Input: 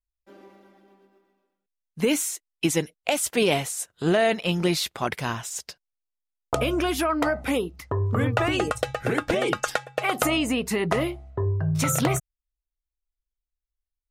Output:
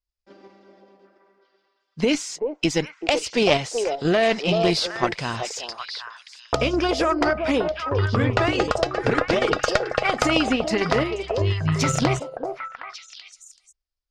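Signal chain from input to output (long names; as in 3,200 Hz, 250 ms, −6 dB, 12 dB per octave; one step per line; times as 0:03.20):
in parallel at +2 dB: output level in coarse steps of 12 dB
on the sum: low-pass filter 6,600 Hz 24 dB per octave
parametric band 4,900 Hz +9.5 dB 0.29 octaves
on a send: echo through a band-pass that steps 382 ms, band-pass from 550 Hz, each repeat 1.4 octaves, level −2 dB
on the sum: harmonic generator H 2 −9 dB, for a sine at −1 dBFS
level −3.5 dB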